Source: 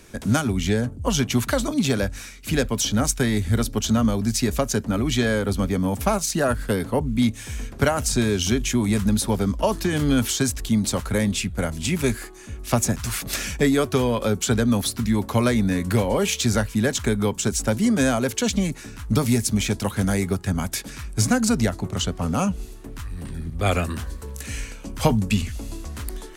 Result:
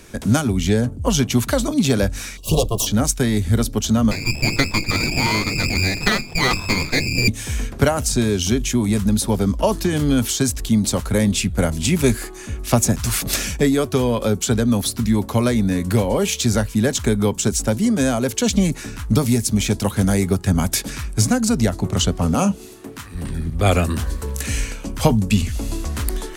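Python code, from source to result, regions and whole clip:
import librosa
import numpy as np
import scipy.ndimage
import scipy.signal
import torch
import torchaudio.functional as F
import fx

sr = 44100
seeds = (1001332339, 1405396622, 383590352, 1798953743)

y = fx.chain(x, sr, fx.lower_of_two(delay_ms=1.8),
    fx.ellip_bandstop(low_hz=1100.0, high_hz=2800.0, order=3, stop_db=40), at=(2.37, 2.87))
y = fx.chain(y, sr, fx.hum_notches(base_hz=50, count=10),
    fx.freq_invert(carrier_hz=2600),
    fx.running_max(window=9), at=(4.11, 7.28))
y = fx.chain(y, sr, fx.highpass(hz=160.0, slope=12),
    fx.doubler(ms=30.0, db=-12), at=(22.35, 23.15))
y = fx.dynamic_eq(y, sr, hz=1700.0, q=0.78, threshold_db=-39.0, ratio=4.0, max_db=-4)
y = fx.rider(y, sr, range_db=4, speed_s=0.5)
y = F.gain(torch.from_numpy(y), 4.5).numpy()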